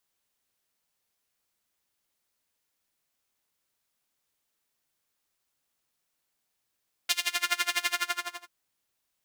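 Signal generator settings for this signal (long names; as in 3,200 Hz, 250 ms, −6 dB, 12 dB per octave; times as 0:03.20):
subtractive patch with tremolo F4, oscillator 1 saw, interval +12 semitones, detune 17 cents, sub −18 dB, filter highpass, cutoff 1,100 Hz, Q 1.2, filter envelope 1.5 octaves, filter decay 0.35 s, filter sustain 50%, attack 5.6 ms, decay 0.07 s, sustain −5.5 dB, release 0.59 s, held 0.80 s, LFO 12 Hz, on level 24 dB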